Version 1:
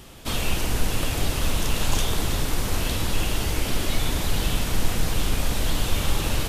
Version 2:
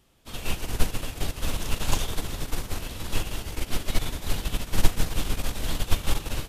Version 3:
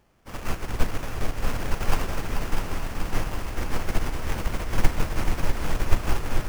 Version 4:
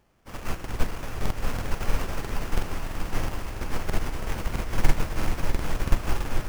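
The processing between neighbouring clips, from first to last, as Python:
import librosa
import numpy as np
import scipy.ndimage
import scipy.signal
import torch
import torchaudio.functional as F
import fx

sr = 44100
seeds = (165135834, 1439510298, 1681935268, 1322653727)

y1 = fx.upward_expand(x, sr, threshold_db=-29.0, expansion=2.5)
y1 = y1 * librosa.db_to_amplitude(5.5)
y2 = fx.sample_hold(y1, sr, seeds[0], rate_hz=3900.0, jitter_pct=20)
y2 = fx.echo_heads(y2, sr, ms=216, heads='second and third', feedback_pct=66, wet_db=-8.5)
y3 = fx.buffer_crackle(y2, sr, first_s=0.55, period_s=0.33, block=2048, kind='repeat')
y3 = y3 * librosa.db_to_amplitude(-2.0)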